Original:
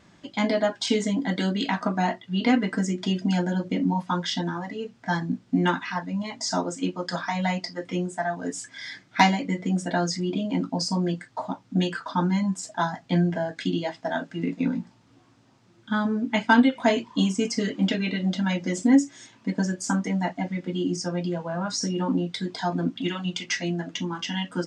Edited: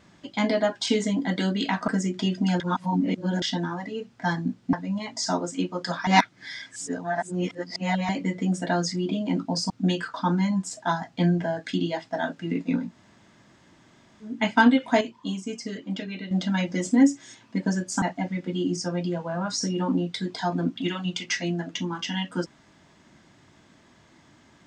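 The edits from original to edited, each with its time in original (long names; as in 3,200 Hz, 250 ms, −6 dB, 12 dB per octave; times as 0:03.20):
0:01.88–0:02.72: remove
0:03.44–0:04.26: reverse
0:05.57–0:05.97: remove
0:07.31–0:09.33: reverse
0:10.94–0:11.62: remove
0:14.79–0:16.24: fill with room tone, crossfade 0.24 s
0:16.93–0:18.23: clip gain −8 dB
0:19.94–0:20.22: remove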